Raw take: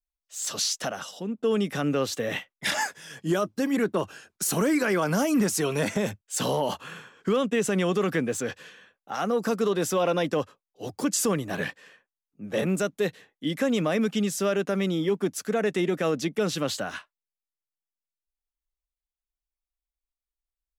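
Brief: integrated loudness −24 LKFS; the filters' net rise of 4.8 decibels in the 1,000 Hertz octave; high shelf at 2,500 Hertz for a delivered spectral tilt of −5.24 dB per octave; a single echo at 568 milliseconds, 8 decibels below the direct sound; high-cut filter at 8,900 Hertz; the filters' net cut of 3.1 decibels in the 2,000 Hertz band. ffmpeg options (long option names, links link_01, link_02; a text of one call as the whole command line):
ffmpeg -i in.wav -af "lowpass=8900,equalizer=frequency=1000:width_type=o:gain=8.5,equalizer=frequency=2000:width_type=o:gain=-6,highshelf=frequency=2500:gain=-3.5,aecho=1:1:568:0.398,volume=2dB" out.wav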